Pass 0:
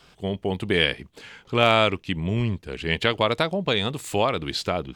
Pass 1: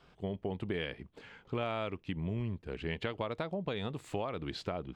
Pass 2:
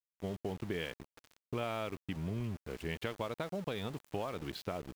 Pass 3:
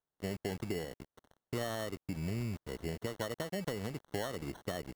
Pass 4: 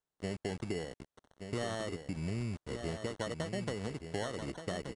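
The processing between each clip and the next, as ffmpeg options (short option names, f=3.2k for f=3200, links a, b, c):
-af "lowpass=f=1.5k:p=1,acompressor=threshold=-27dB:ratio=5,volume=-5.5dB"
-af "aeval=exprs='val(0)*gte(abs(val(0)),0.00631)':c=same,volume=-2dB"
-filter_complex "[0:a]acrossover=split=390|1100[a][b][c];[c]acompressor=threshold=-54dB:ratio=6[d];[a][b][d]amix=inputs=3:normalize=0,acrusher=samples=18:mix=1:aa=0.000001,volume=1dB"
-filter_complex "[0:a]asplit=2[a][b];[b]aecho=0:1:1177:0.398[c];[a][c]amix=inputs=2:normalize=0,aresample=22050,aresample=44100"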